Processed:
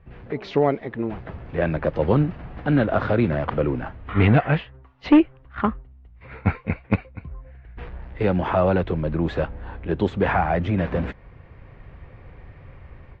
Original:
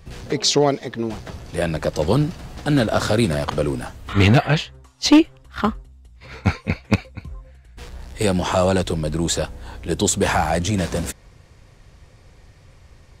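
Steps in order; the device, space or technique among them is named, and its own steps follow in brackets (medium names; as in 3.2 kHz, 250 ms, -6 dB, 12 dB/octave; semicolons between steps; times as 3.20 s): action camera in a waterproof case (low-pass 2.4 kHz 24 dB/octave; level rider; trim -6.5 dB; AAC 64 kbps 44.1 kHz)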